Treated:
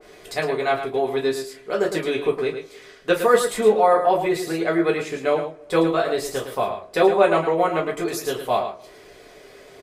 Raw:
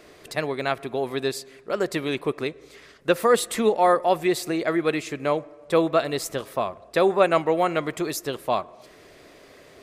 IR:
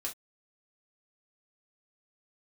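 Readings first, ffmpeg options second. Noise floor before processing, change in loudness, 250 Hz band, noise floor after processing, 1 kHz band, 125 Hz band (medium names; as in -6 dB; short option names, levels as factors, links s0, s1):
-51 dBFS, +2.5 dB, +1.5 dB, -47 dBFS, +2.5 dB, +0.5 dB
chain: -filter_complex "[0:a]aecho=1:1:109:0.376[s0];[1:a]atrim=start_sample=2205,asetrate=57330,aresample=44100[s1];[s0][s1]afir=irnorm=-1:irlink=0,adynamicequalizer=threshold=0.0126:dfrequency=1900:dqfactor=0.7:tfrequency=1900:tqfactor=0.7:attack=5:release=100:ratio=0.375:range=3.5:mode=cutabove:tftype=highshelf,volume=1.68"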